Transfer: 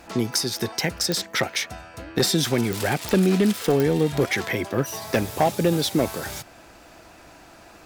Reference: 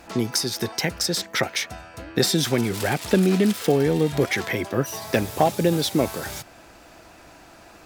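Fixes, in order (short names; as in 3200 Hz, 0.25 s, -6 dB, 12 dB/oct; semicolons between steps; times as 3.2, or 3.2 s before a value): clip repair -12 dBFS; de-click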